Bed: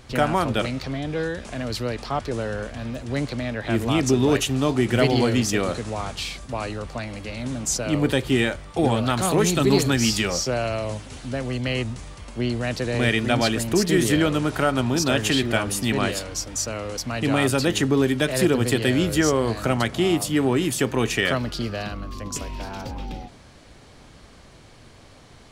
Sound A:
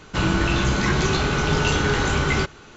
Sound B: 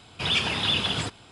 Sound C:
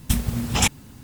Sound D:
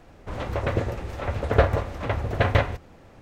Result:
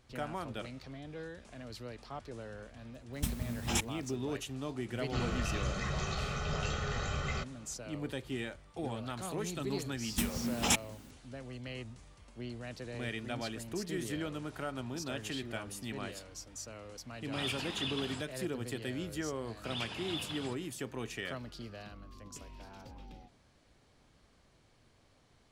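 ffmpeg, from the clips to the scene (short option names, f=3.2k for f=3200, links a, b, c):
-filter_complex "[3:a]asplit=2[a][b];[2:a]asplit=2[c][d];[0:a]volume=-18dB[e];[1:a]aecho=1:1:1.6:0.78[f];[b]lowshelf=f=170:t=q:w=1.5:g=-7.5[g];[a]atrim=end=1.03,asetpts=PTS-STARTPTS,volume=-13dB,afade=t=in:d=0.004:c=hsin,afade=t=out:st=1.026:d=0.004:c=hsin,adelay=138033S[h];[f]atrim=end=2.76,asetpts=PTS-STARTPTS,volume=-17dB,afade=t=in:d=0.004:c=hsin,afade=t=out:st=2.756:d=0.004:c=hsin,adelay=4980[i];[g]atrim=end=1.03,asetpts=PTS-STARTPTS,volume=-8.5dB,afade=t=in:d=0.004:c=hsin,afade=t=out:st=1.026:d=0.004:c=hsin,adelay=10080[j];[c]atrim=end=1.31,asetpts=PTS-STARTPTS,volume=-14dB,afade=t=in:d=0.004:c=hsin,afade=t=out:st=1.306:d=0.004:c=hsin,adelay=17130[k];[d]atrim=end=1.31,asetpts=PTS-STARTPTS,volume=-16.5dB,afade=t=in:d=0.004:c=hsin,afade=t=out:st=1.306:d=0.004:c=hsin,adelay=19450[l];[e][h][i][j][k][l]amix=inputs=6:normalize=0"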